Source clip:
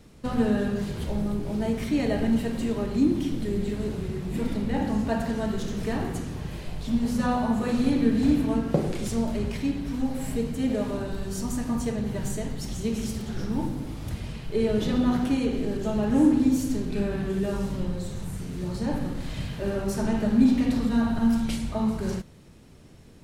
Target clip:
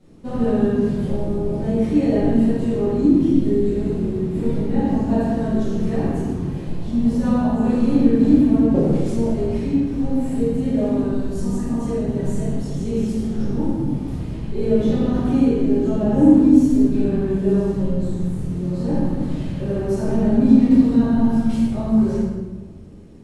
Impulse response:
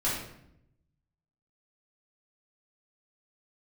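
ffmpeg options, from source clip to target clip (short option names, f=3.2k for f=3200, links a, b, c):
-filter_complex "[0:a]equalizer=f=310:w=0.58:g=11[a];[1:a]atrim=start_sample=2205,asetrate=24255,aresample=44100[b];[a][b]afir=irnorm=-1:irlink=0,volume=-15.5dB"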